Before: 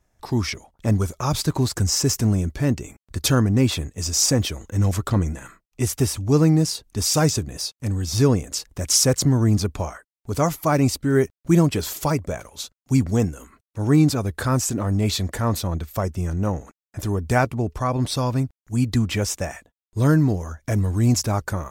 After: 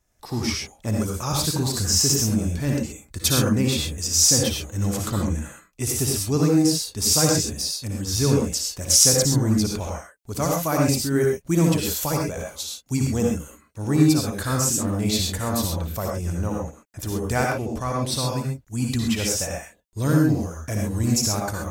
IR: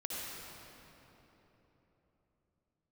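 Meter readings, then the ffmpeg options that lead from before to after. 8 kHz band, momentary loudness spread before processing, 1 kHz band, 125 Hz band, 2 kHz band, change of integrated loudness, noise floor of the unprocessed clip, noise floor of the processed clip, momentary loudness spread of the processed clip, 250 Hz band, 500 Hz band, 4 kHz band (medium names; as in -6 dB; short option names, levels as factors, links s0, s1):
+4.5 dB, 11 LU, -2.0 dB, -3.5 dB, -0.5 dB, 0.0 dB, under -85 dBFS, -57 dBFS, 12 LU, -1.0 dB, -1.0 dB, +3.0 dB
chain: -filter_complex "[0:a]highshelf=f=3300:g=8.5[s0];[1:a]atrim=start_sample=2205,atrim=end_sample=6174[s1];[s0][s1]afir=irnorm=-1:irlink=0,volume=0.841"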